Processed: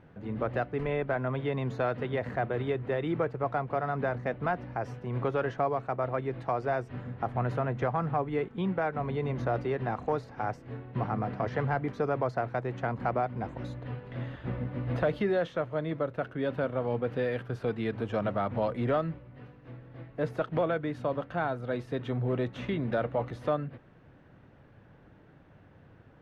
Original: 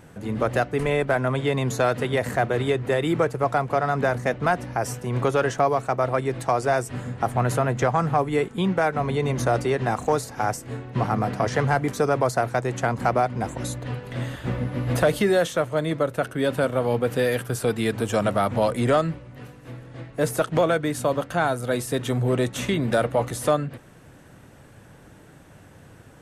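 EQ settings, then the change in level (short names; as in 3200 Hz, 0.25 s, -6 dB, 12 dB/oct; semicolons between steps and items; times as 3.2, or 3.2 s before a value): air absorption 300 m; -7.0 dB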